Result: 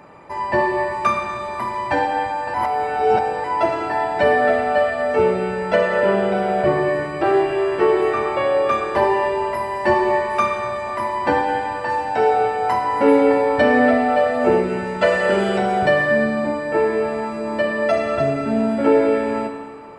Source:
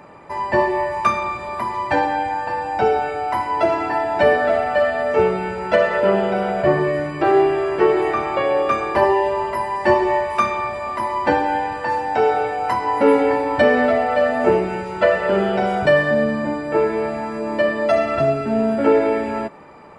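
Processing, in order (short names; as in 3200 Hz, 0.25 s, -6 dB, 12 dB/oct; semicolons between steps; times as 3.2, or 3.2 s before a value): 2.54–3.44 reverse; 15.01–15.58 high shelf 3800 Hz +11.5 dB; Schroeder reverb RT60 2 s, combs from 25 ms, DRR 6 dB; gain -1.5 dB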